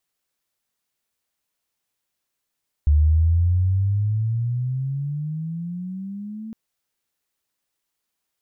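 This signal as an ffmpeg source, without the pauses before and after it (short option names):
-f lavfi -i "aevalsrc='pow(10,(-12-19*t/3.66)/20)*sin(2*PI*72.8*3.66/(19.5*log(2)/12)*(exp(19.5*log(2)/12*t/3.66)-1))':d=3.66:s=44100"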